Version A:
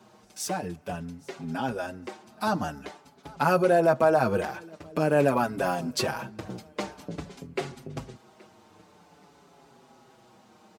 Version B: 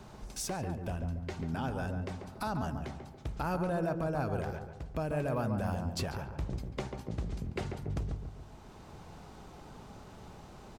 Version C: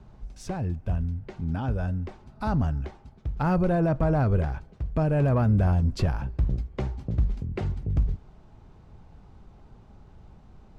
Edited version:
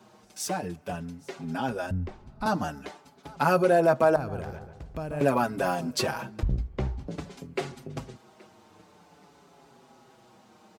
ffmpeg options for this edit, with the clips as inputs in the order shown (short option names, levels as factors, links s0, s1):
-filter_complex "[2:a]asplit=2[s0][s1];[0:a]asplit=4[s2][s3][s4][s5];[s2]atrim=end=1.912[s6];[s0]atrim=start=1.908:end=2.462[s7];[s3]atrim=start=2.458:end=4.162[s8];[1:a]atrim=start=4.158:end=5.212[s9];[s4]atrim=start=5.208:end=6.432[s10];[s1]atrim=start=6.428:end=7.082[s11];[s5]atrim=start=7.078[s12];[s6][s7]acrossfade=d=0.004:c1=hsin:c2=hsin[s13];[s13][s8]acrossfade=d=0.004:c1=hsin:c2=hsin[s14];[s14][s9]acrossfade=d=0.004:c1=hsin:c2=hsin[s15];[s15][s10]acrossfade=d=0.004:c1=hsin:c2=hsin[s16];[s16][s11]acrossfade=d=0.004:c1=hsin:c2=hsin[s17];[s17][s12]acrossfade=d=0.004:c1=hsin:c2=hsin"